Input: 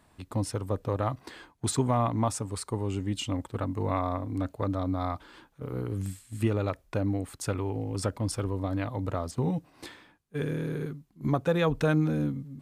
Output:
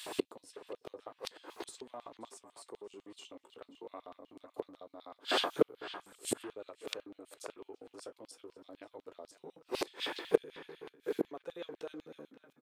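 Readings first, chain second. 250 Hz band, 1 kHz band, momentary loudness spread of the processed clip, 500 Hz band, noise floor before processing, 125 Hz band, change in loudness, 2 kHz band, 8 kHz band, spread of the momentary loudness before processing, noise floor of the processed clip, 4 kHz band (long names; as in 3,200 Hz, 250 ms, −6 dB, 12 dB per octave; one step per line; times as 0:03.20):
−14.5 dB, −11.5 dB, 20 LU, −6.5 dB, −65 dBFS, −31.0 dB, −9.5 dB, −5.5 dB, −9.5 dB, 10 LU, −76 dBFS, +0.5 dB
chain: high-pass filter 82 Hz 24 dB per octave
parametric band 1,900 Hz −2 dB 0.54 octaves
in parallel at +3 dB: downward compressor 10 to 1, threshold −36 dBFS, peak gain reduction 16.5 dB
on the sum: flanger 0.45 Hz, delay 9.3 ms, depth 9.6 ms, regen −43%
far-end echo of a speakerphone 330 ms, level −19 dB
gate with flip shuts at −32 dBFS, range −35 dB
on a send: feedback echo with a band-pass in the loop 531 ms, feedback 42%, band-pass 1,400 Hz, level −11.5 dB
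on the sum: auto-filter high-pass square 8 Hz 410–3,200 Hz
level +17 dB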